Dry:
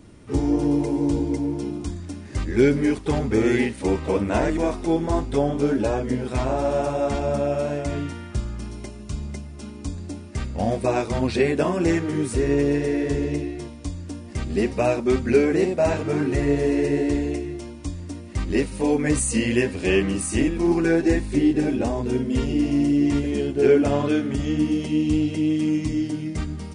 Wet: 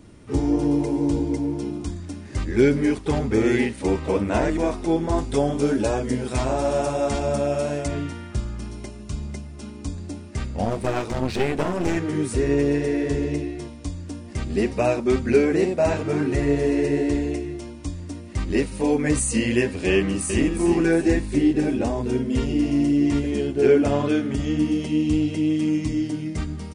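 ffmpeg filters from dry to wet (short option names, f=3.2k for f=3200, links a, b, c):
-filter_complex "[0:a]asettb=1/sr,asplit=3[a][b][c];[a]atrim=end=5.184[d];[b]atrim=start=5.18:end=7.88,asetpts=PTS-STARTPTS,afade=t=in:d=0.004:c=qsin,afade=t=out:st=2.696:d=0.004:c=qsin,highshelf=f=5.2k:g=10[e];[c]atrim=start=7.876[f];[d][e]acrossfade=d=0.004:c1=hsin:c2=qsin[g];[g][f]acrossfade=d=0.004:c1=qsin:c2=hsin,asettb=1/sr,asplit=3[h][i][j];[h]atrim=end=10.654[k];[i]atrim=start=10.65:end=11.97,asetpts=PTS-STARTPTS,afade=t=in:d=0.004:c=qsin,afade=t=out:st=1.316:d=0.004:c=qsin,aeval=exprs='clip(val(0),-1,0.0299)':c=same[l];[j]atrim=start=11.966[m];[k][l]acrossfade=d=0.004:c1=hsin:c2=qsin[n];[n][m]acrossfade=d=0.004:c1=qsin:c2=hsin,asplit=2[o][p];[p]afade=t=in:st=19.93:d=0.01,afade=t=out:st=20.53:d=0.01,aecho=0:1:360|720|1080|1440|1800:0.354813|0.159666|0.0718497|0.0323324|0.0145496[q];[o][q]amix=inputs=2:normalize=0"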